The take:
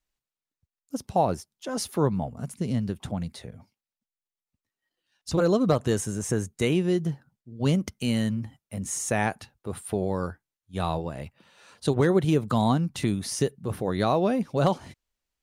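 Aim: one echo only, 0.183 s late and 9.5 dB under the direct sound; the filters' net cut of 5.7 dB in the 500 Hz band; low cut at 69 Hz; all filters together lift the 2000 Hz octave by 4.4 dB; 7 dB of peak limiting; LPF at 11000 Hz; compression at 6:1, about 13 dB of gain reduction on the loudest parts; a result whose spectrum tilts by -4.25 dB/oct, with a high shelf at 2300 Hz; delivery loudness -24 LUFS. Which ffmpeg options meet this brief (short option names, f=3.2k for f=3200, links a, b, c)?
-af "highpass=69,lowpass=11k,equalizer=f=500:t=o:g=-8,equalizer=f=2k:t=o:g=3.5,highshelf=f=2.3k:g=5,acompressor=threshold=-34dB:ratio=6,alimiter=level_in=2.5dB:limit=-24dB:level=0:latency=1,volume=-2.5dB,aecho=1:1:183:0.335,volume=14.5dB"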